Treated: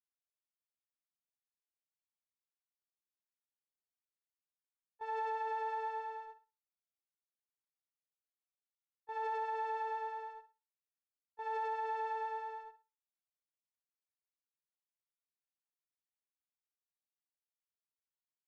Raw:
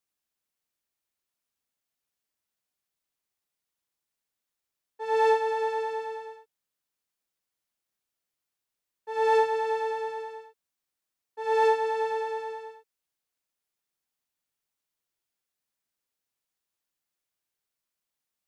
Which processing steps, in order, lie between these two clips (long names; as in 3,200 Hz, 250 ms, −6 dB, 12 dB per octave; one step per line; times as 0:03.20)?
Bessel high-pass filter 1,100 Hz, order 4
noise gate −48 dBFS, range −13 dB
spectral tilt −6 dB per octave
brickwall limiter −30 dBFS, peak gain reduction 9 dB
flutter between parallel walls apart 10.5 metres, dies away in 0.26 s
level −1.5 dB